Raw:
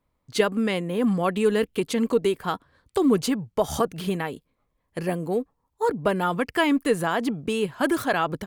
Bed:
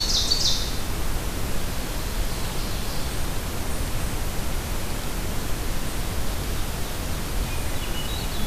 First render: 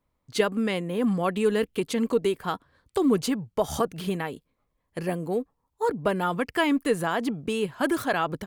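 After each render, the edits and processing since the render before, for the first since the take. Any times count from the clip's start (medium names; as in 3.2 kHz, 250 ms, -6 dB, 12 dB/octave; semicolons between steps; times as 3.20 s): trim -2 dB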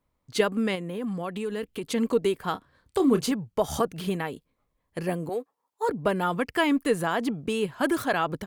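0.75–1.84 s: compression 2.5:1, threshold -31 dBFS; 2.52–3.32 s: doubling 29 ms -10 dB; 5.29–5.89 s: high-pass 440 Hz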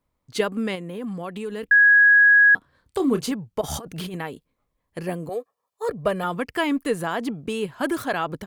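1.71–2.55 s: bleep 1.66 kHz -10.5 dBFS; 3.61–4.14 s: compressor with a negative ratio -32 dBFS; 5.27–6.24 s: comb 1.7 ms, depth 57%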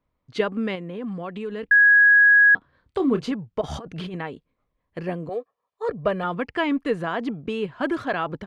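low-pass 3.4 kHz 12 dB/octave; band-stop 850 Hz, Q 22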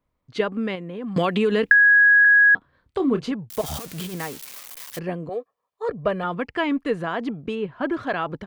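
1.16–2.25 s: three bands compressed up and down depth 100%; 3.50–4.99 s: zero-crossing glitches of -23.5 dBFS; 7.54–8.02 s: low-pass 1.9 kHz -> 2.8 kHz 6 dB/octave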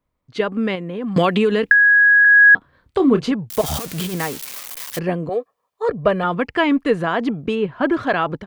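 level rider gain up to 7 dB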